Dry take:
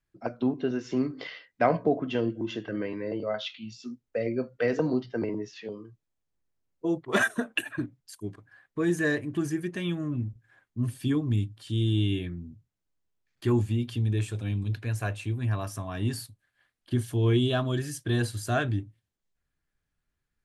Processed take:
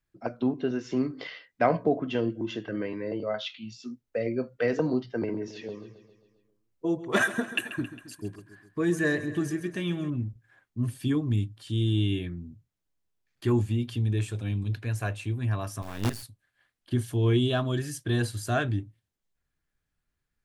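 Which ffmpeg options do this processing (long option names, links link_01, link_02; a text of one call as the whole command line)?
ffmpeg -i in.wav -filter_complex "[0:a]asettb=1/sr,asplit=3[link_01][link_02][link_03];[link_01]atrim=end=5.084[link_04];[link_02]atrim=start=5.08:end=10.1,asetpts=PTS-STARTPTS,afade=type=in:duration=0.004:curve=qsin,afade=type=out:start_time=5.016:duration=0.004:curve=qsin,aecho=1:1:135|270|405|540|675|810:0.2|0.116|0.0671|0.0389|0.0226|0.0131,atrim=end_sample=221382[link_05];[link_03]atrim=start=10.096[link_06];[link_04][link_05]acrossfade=duration=0.004:curve1=hsin:curve2=qsin[link_07];[link_07][link_06]acrossfade=duration=0.004:curve1=qsin:curve2=hsin,asettb=1/sr,asplit=3[link_08][link_09][link_10];[link_08]atrim=end=15.824[link_11];[link_09]atrim=start=15.82:end=16.23,asetpts=PTS-STARTPTS,afade=type=in:duration=0.004:curve=qsin,afade=type=out:start_time=0.406:duration=0.004:curve=qsin,acrusher=bits=5:dc=4:mix=0:aa=0.000001[link_12];[link_10]atrim=start=16.226[link_13];[link_11][link_12]acrossfade=duration=0.004:curve1=hsin:curve2=qsin[link_14];[link_14][link_13]acrossfade=duration=0.004:curve1=qsin:curve2=hsin" out.wav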